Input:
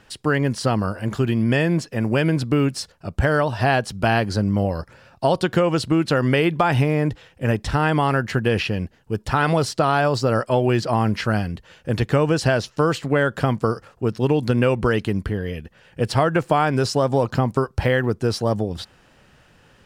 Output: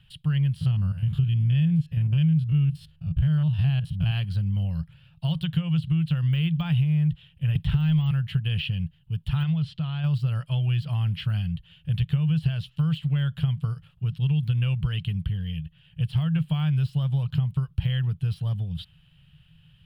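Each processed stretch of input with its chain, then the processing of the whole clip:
0.56–4.11 stepped spectrum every 50 ms + low shelf 230 Hz +7 dB
7.55–8.11 sample leveller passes 1 + three-band squash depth 70%
9.43–10.04 LPF 4500 Hz + compressor 2:1, threshold -24 dBFS
whole clip: de-esser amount 70%; EQ curve 110 Hz 0 dB, 160 Hz +7 dB, 230 Hz -23 dB, 370 Hz -29 dB, 2100 Hz -14 dB, 3100 Hz +2 dB, 6100 Hz -27 dB, 11000 Hz -9 dB; compressor 4:1, threshold -20 dBFS

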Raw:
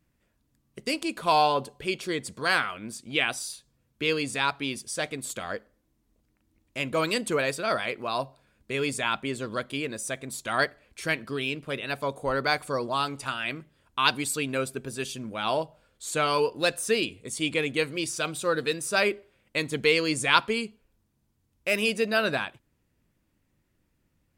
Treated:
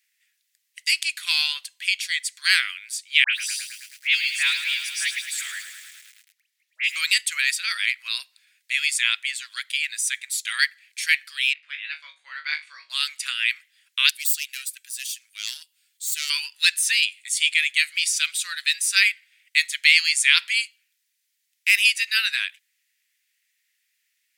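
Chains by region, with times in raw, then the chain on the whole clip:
3.24–6.96 high shelf 4900 Hz -6 dB + dispersion highs, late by 93 ms, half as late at 2600 Hz + lo-fi delay 0.107 s, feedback 80%, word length 8-bit, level -9.5 dB
11.53–12.9 tape spacing loss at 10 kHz 32 dB + flutter echo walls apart 3.4 m, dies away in 0.21 s
14.09–16.3 self-modulated delay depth 0.14 ms + pre-emphasis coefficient 0.8
whole clip: Chebyshev high-pass 1900 Hz, order 4; maximiser +12 dB; gain -1 dB

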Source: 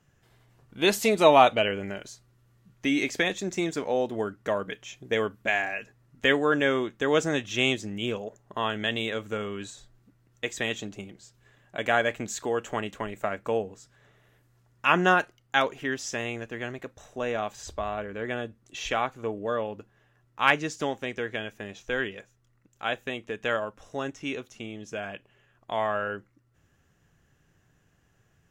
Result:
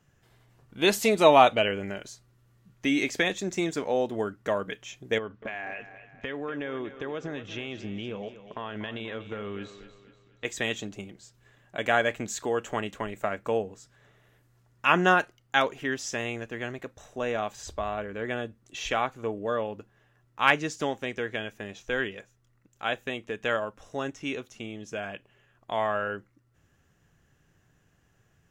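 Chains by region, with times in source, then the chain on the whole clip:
5.18–10.45 compressor, threshold -30 dBFS + air absorption 190 m + thinning echo 0.242 s, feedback 46%, high-pass 190 Hz, level -12 dB
whole clip: dry

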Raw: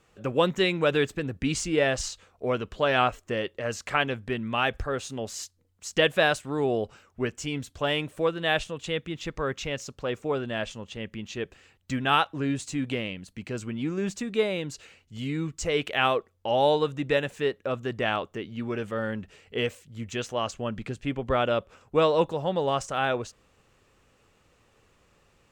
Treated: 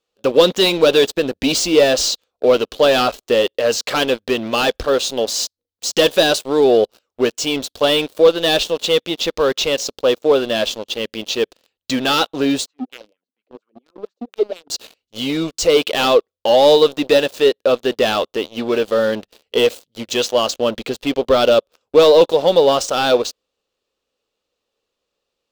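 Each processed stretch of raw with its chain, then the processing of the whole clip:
12.66–14.7 HPF 190 Hz 6 dB/oct + high shelf 7300 Hz -4.5 dB + wah 4.3 Hz 240–1500 Hz, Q 4.6
whole clip: tilt shelf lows -8 dB, about 1200 Hz; sample leveller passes 5; graphic EQ 125/250/500/2000/4000/8000 Hz -7/+5/+11/-8/+7/-7 dB; gain -6.5 dB

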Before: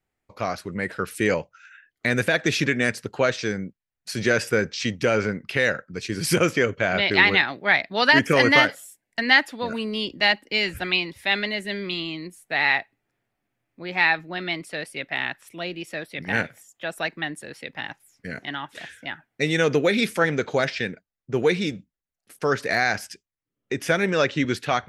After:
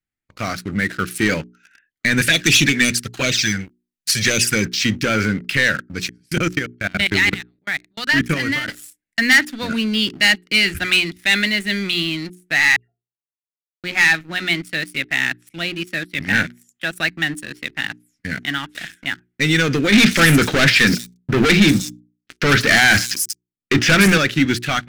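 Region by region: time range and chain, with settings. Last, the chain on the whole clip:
2.21–4.66 high shelf 2300 Hz +11.5 dB + envelope flanger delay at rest 6.6 ms, full sweep at -14 dBFS
6.09–8.68 low shelf 84 Hz +9.5 dB + level quantiser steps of 22 dB + random-step tremolo 4 Hz, depth 85%
12.76–13.84 vowel filter e + octave resonator F, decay 0.18 s + dispersion lows, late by 0.132 s, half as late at 1900 Hz
19.92–24.18 sample leveller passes 3 + notches 60/120/180/240/300/360 Hz + bands offset in time lows, highs 0.19 s, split 5800 Hz
whole clip: sample leveller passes 3; band shelf 660 Hz -10.5 dB; notches 60/120/180/240/300/360/420 Hz; gain -1.5 dB

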